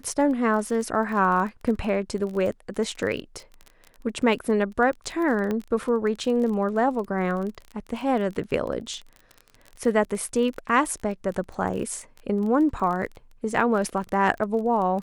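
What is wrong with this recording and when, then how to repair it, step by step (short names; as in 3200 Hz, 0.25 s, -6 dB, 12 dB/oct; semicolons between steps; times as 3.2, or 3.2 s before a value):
crackle 25/s -31 dBFS
5.51 pop -16 dBFS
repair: de-click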